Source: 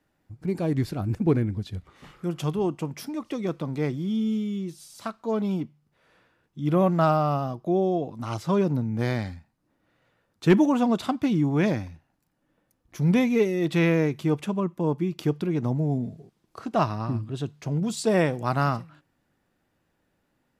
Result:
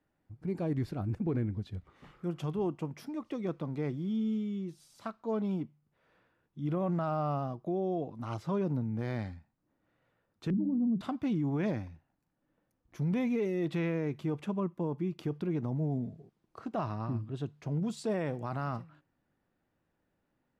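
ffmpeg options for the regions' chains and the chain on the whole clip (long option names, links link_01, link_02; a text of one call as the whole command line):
ffmpeg -i in.wav -filter_complex "[0:a]asettb=1/sr,asplit=3[link_01][link_02][link_03];[link_01]atrim=end=10.504[link_04];[link_02]atrim=start=10.5:end=11.01,asetpts=PTS-STARTPTS,afade=type=in:duration=0.004:curve=qsin,afade=type=out:start_time=0.506:duration=0.004:curve=qsin,lowpass=frequency=190:width_type=q:width=2.2,bandreject=frequency=99.85:width_type=h:width=4,bandreject=frequency=199.7:width_type=h:width=4,bandreject=frequency=299.55:width_type=h:width=4,bandreject=frequency=399.4:width_type=h:width=4[link_05];[link_03]atrim=start=11.006[link_06];[link_04][link_05]acrossfade=duration=0.004:curve1=hsin:curve2=qsin[link_07];[link_07][link_06]acrossfade=duration=0.004:curve1=qsin:curve2=hsin,highshelf=frequency=3600:gain=-10.5,alimiter=limit=-18.5dB:level=0:latency=1:release=23,volume=-6dB" out.wav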